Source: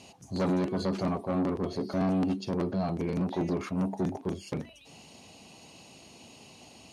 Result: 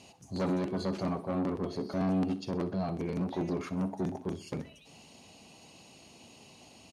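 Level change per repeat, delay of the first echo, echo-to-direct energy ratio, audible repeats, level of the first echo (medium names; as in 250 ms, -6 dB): -6.5 dB, 64 ms, -15.0 dB, 3, -16.0 dB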